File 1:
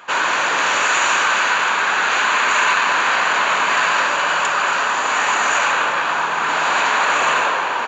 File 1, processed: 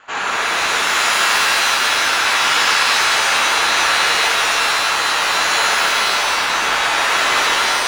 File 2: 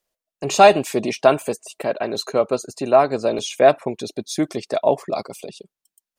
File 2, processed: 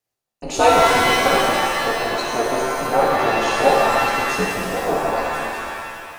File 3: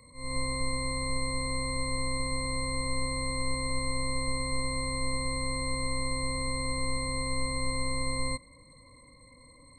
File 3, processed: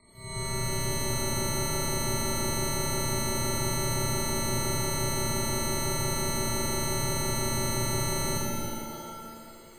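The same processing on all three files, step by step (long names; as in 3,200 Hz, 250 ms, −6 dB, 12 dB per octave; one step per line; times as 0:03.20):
ring modulation 120 Hz
reverb with rising layers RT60 2 s, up +7 semitones, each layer −2 dB, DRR −3 dB
level −3 dB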